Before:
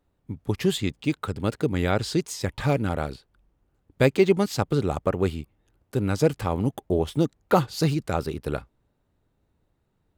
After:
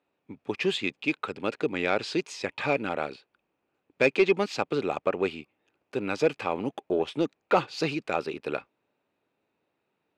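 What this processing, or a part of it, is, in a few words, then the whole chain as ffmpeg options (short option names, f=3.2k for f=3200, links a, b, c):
intercom: -af "highpass=320,lowpass=4.6k,equalizer=f=2.5k:t=o:w=0.25:g=11,asoftclip=type=tanh:threshold=-10.5dB"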